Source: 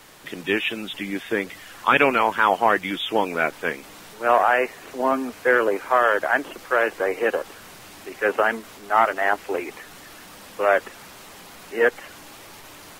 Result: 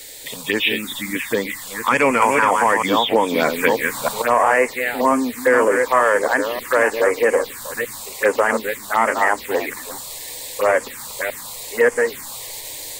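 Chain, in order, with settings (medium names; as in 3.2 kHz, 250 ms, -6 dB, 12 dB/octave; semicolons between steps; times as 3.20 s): chunks repeated in reverse 314 ms, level -7 dB; saturation -6 dBFS, distortion -22 dB; rippled EQ curve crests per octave 1, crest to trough 7 dB; touch-sensitive phaser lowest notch 170 Hz, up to 3.9 kHz, full sweep at -16.5 dBFS; treble shelf 3 kHz +12 dB; loudness maximiser +9 dB; 2.22–4.22 s: three bands compressed up and down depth 100%; trim -4.5 dB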